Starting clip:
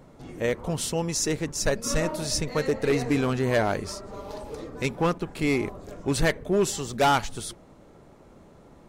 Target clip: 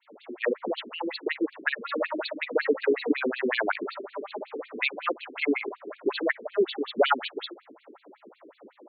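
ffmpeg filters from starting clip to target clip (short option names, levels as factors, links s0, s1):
-af "acompressor=threshold=0.0562:ratio=5,adynamicequalizer=threshold=0.00447:dfrequency=1600:dqfactor=0.95:tfrequency=1600:tqfactor=0.95:attack=5:release=100:ratio=0.375:range=3.5:mode=boostabove:tftype=bell,afftfilt=real='re*between(b*sr/1024,300*pow(3300/300,0.5+0.5*sin(2*PI*5.4*pts/sr))/1.41,300*pow(3300/300,0.5+0.5*sin(2*PI*5.4*pts/sr))*1.41)':imag='im*between(b*sr/1024,300*pow(3300/300,0.5+0.5*sin(2*PI*5.4*pts/sr))/1.41,300*pow(3300/300,0.5+0.5*sin(2*PI*5.4*pts/sr))*1.41)':win_size=1024:overlap=0.75,volume=2.51"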